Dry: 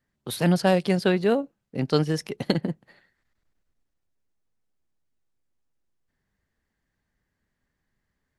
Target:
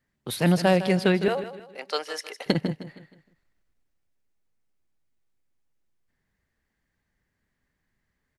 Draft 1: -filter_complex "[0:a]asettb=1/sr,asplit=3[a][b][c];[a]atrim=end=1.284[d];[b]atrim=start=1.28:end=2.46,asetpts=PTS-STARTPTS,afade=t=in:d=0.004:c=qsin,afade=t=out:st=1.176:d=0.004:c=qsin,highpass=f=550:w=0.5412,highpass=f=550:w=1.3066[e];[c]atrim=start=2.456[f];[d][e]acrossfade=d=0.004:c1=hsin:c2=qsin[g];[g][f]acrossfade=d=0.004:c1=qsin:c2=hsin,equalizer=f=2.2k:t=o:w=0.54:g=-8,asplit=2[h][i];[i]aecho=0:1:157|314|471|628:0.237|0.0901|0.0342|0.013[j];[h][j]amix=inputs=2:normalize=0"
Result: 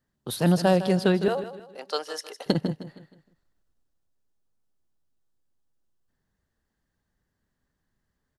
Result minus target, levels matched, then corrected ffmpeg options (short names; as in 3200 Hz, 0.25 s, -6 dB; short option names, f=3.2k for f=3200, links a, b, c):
2000 Hz band -4.0 dB
-filter_complex "[0:a]asettb=1/sr,asplit=3[a][b][c];[a]atrim=end=1.284[d];[b]atrim=start=1.28:end=2.46,asetpts=PTS-STARTPTS,afade=t=in:d=0.004:c=qsin,afade=t=out:st=1.176:d=0.004:c=qsin,highpass=f=550:w=0.5412,highpass=f=550:w=1.3066[e];[c]atrim=start=2.456[f];[d][e]acrossfade=d=0.004:c1=hsin:c2=qsin[g];[g][f]acrossfade=d=0.004:c1=qsin:c2=hsin,equalizer=f=2.2k:t=o:w=0.54:g=3.5,asplit=2[h][i];[i]aecho=0:1:157|314|471|628:0.237|0.0901|0.0342|0.013[j];[h][j]amix=inputs=2:normalize=0"